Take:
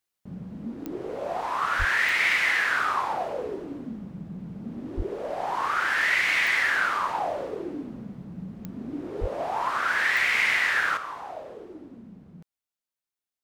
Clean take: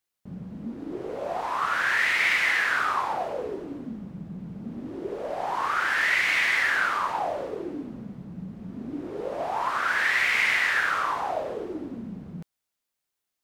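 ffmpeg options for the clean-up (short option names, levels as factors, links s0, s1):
-filter_complex "[0:a]adeclick=t=4,asplit=3[s0][s1][s2];[s0]afade=t=out:st=1.78:d=0.02[s3];[s1]highpass=f=140:w=0.5412,highpass=f=140:w=1.3066,afade=t=in:st=1.78:d=0.02,afade=t=out:st=1.9:d=0.02[s4];[s2]afade=t=in:st=1.9:d=0.02[s5];[s3][s4][s5]amix=inputs=3:normalize=0,asplit=3[s6][s7][s8];[s6]afade=t=out:st=4.96:d=0.02[s9];[s7]highpass=f=140:w=0.5412,highpass=f=140:w=1.3066,afade=t=in:st=4.96:d=0.02,afade=t=out:st=5.08:d=0.02[s10];[s8]afade=t=in:st=5.08:d=0.02[s11];[s9][s10][s11]amix=inputs=3:normalize=0,asplit=3[s12][s13][s14];[s12]afade=t=out:st=9.2:d=0.02[s15];[s13]highpass=f=140:w=0.5412,highpass=f=140:w=1.3066,afade=t=in:st=9.2:d=0.02,afade=t=out:st=9.32:d=0.02[s16];[s14]afade=t=in:st=9.32:d=0.02[s17];[s15][s16][s17]amix=inputs=3:normalize=0,asetnsamples=n=441:p=0,asendcmd='10.97 volume volume 9dB',volume=1"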